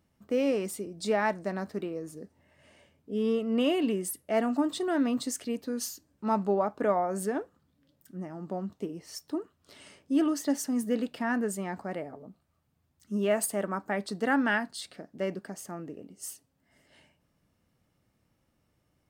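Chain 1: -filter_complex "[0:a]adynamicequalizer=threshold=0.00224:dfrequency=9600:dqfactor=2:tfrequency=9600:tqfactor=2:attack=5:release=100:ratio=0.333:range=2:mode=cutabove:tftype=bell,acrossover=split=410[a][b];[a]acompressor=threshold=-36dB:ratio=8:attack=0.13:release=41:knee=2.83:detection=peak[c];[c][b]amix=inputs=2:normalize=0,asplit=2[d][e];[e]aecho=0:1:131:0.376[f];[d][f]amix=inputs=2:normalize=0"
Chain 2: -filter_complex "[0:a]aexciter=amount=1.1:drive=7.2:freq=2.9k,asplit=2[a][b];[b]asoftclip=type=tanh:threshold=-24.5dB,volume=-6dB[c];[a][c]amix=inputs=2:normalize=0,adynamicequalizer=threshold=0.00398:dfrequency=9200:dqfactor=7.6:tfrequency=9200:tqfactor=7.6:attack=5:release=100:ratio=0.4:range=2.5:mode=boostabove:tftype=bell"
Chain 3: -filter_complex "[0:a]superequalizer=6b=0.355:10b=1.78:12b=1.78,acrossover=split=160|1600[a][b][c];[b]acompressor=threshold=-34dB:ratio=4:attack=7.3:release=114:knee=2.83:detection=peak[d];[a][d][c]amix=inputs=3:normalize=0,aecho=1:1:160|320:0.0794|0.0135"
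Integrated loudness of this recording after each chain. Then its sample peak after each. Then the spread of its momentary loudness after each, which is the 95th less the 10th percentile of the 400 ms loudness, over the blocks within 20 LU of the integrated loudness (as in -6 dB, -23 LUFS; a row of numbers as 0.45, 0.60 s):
-33.0, -27.5, -35.5 LUFS; -14.0, -8.5, -16.0 dBFS; 15, 13, 13 LU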